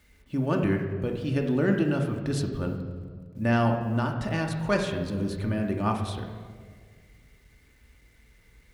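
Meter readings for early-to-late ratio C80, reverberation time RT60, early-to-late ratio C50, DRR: 8.0 dB, 1.8 s, 6.0 dB, 2.0 dB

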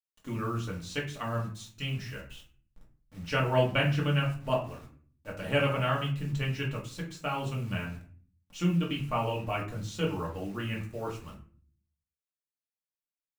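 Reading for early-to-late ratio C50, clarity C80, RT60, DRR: 8.0 dB, 13.5 dB, 0.45 s, -3.5 dB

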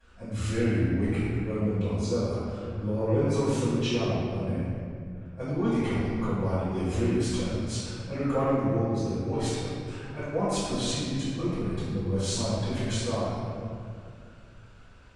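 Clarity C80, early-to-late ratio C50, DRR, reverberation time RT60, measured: -1.5 dB, -4.0 dB, -17.0 dB, 2.2 s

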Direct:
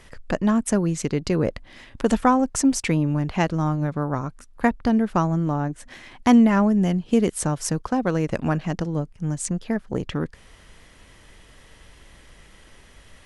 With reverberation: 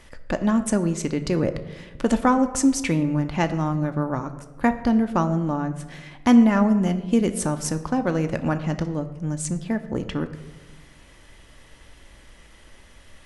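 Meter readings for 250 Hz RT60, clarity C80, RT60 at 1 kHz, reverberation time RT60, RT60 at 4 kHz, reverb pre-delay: 1.6 s, 14.0 dB, 1.1 s, 1.2 s, 0.65 s, 3 ms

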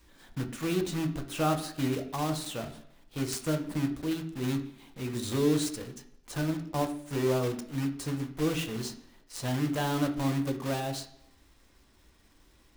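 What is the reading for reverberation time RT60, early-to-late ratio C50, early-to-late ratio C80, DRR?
0.70 s, 11.0 dB, 14.0 dB, 5.0 dB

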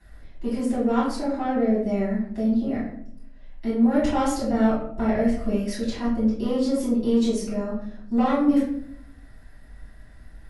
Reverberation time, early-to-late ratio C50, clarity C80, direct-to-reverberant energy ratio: 0.70 s, 2.5 dB, 7.0 dB, -11.0 dB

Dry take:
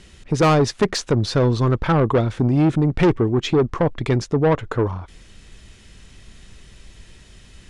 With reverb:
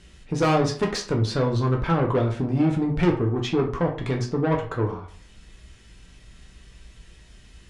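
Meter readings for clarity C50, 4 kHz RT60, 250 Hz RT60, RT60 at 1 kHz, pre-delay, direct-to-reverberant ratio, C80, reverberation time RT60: 9.0 dB, 0.30 s, 0.40 s, 0.45 s, 7 ms, 0.0 dB, 13.5 dB, 0.45 s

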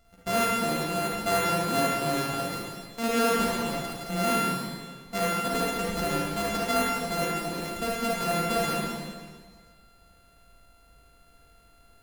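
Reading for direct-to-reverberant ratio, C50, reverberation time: -6.0 dB, -5.0 dB, 1.7 s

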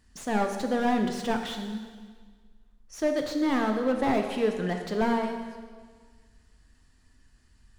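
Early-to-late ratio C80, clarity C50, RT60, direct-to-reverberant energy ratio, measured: 7.5 dB, 6.0 dB, 1.6 s, 4.0 dB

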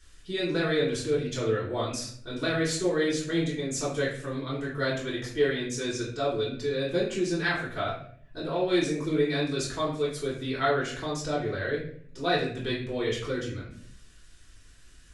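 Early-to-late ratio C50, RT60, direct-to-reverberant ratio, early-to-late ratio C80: 4.5 dB, 0.60 s, -8.5 dB, 9.0 dB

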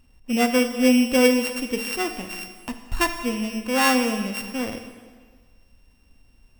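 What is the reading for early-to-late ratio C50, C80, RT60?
9.0 dB, 10.0 dB, 1.6 s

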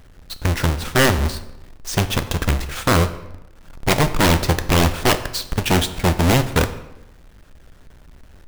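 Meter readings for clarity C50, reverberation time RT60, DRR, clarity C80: 13.0 dB, 0.90 s, 10.0 dB, 15.0 dB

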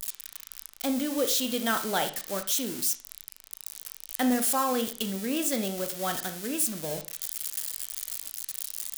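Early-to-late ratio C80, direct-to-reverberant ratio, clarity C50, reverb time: 16.5 dB, 7.0 dB, 11.0 dB, 0.40 s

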